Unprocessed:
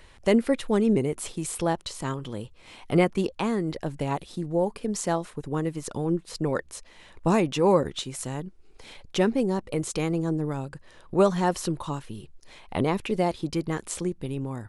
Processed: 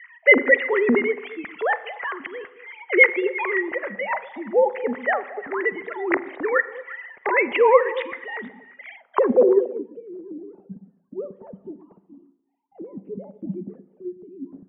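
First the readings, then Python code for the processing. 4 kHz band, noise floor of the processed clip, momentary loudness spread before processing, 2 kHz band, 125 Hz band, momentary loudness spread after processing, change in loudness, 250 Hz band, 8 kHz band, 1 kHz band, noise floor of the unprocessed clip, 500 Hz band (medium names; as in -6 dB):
no reading, -61 dBFS, 12 LU, +16.5 dB, under -15 dB, 23 LU, +6.0 dB, -3.0 dB, under -40 dB, +4.0 dB, -52 dBFS, +5.0 dB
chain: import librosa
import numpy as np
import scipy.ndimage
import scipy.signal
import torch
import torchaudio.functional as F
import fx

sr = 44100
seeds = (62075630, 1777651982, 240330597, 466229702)

p1 = fx.sine_speech(x, sr)
p2 = fx.peak_eq(p1, sr, hz=310.0, db=-10.5, octaves=0.32)
p3 = fx.rev_spring(p2, sr, rt60_s=1.0, pass_ms=(36, 46), chirp_ms=30, drr_db=14.5)
p4 = fx.filter_sweep_lowpass(p3, sr, from_hz=2000.0, to_hz=190.0, start_s=8.92, end_s=9.88, q=7.8)
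p5 = p4 + fx.echo_stepped(p4, sr, ms=115, hz=230.0, octaves=1.4, feedback_pct=70, wet_db=-10.0, dry=0)
y = p5 * librosa.db_to_amplitude(3.0)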